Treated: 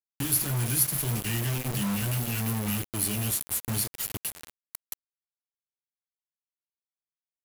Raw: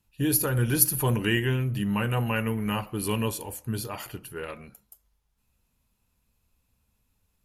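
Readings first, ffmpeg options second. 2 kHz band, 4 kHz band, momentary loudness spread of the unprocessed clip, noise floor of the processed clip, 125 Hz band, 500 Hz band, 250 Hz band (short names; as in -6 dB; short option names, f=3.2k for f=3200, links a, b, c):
-6.0 dB, -0.5 dB, 16 LU, under -85 dBFS, -2.5 dB, -9.5 dB, -4.5 dB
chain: -filter_complex "[0:a]highshelf=f=2.3k:g=9.5,acrossover=split=230|7400[a][b][c];[a]acompressor=threshold=-29dB:ratio=4[d];[b]acompressor=threshold=-38dB:ratio=4[e];[c]acompressor=threshold=-29dB:ratio=4[f];[d][e][f]amix=inputs=3:normalize=0,highshelf=f=5.2k:g=2.5,aecho=1:1:365:0.0708,acrossover=split=140[g][h];[g]acompressor=mode=upward:threshold=-41dB:ratio=2.5[i];[i][h]amix=inputs=2:normalize=0,asuperstop=centerf=760:order=4:qfactor=0.64,flanger=delay=7.3:depth=9.3:regen=-45:speed=0.76:shape=triangular,acrusher=bits=5:mix=0:aa=0.000001,volume=4.5dB"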